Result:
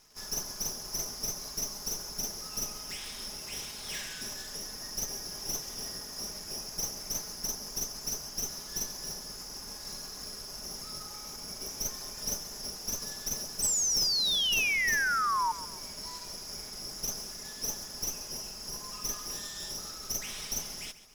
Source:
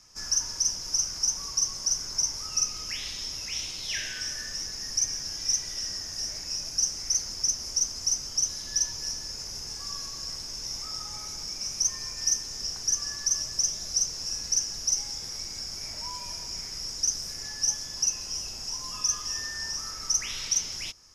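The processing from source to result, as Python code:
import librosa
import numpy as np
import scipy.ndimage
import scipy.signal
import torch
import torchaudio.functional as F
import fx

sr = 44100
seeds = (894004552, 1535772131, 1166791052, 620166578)

p1 = fx.lower_of_two(x, sr, delay_ms=4.8)
p2 = fx.dmg_crackle(p1, sr, seeds[0], per_s=280.0, level_db=-46.0)
p3 = (np.mod(10.0 ** (26.0 / 20.0) * p2 + 1.0, 2.0) - 1.0) / 10.0 ** (26.0 / 20.0)
p4 = p2 + F.gain(torch.from_numpy(p3), -5.5).numpy()
p5 = fx.spec_paint(p4, sr, seeds[1], shape='fall', start_s=13.62, length_s=1.9, low_hz=890.0, high_hz=8200.0, level_db=-21.0)
p6 = fx.echo_feedback(p5, sr, ms=136, feedback_pct=41, wet_db=-15.5)
y = F.gain(torch.from_numpy(p6), -7.5).numpy()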